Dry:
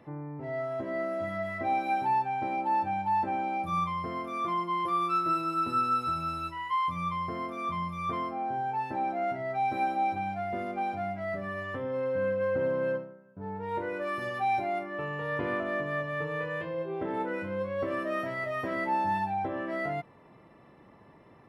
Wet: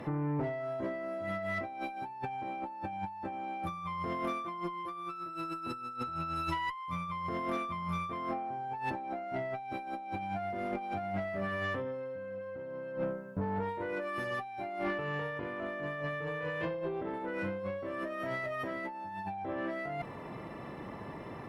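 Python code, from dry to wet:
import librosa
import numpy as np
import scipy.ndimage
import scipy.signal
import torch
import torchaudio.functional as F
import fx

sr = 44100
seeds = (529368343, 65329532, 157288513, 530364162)

y = fx.high_shelf(x, sr, hz=4800.0, db=-9.0, at=(5.96, 6.36))
y = fx.over_compress(y, sr, threshold_db=-41.0, ratio=-1.0)
y = fx.tube_stage(y, sr, drive_db=30.0, bias=0.3)
y = y * 10.0 ** (4.5 / 20.0)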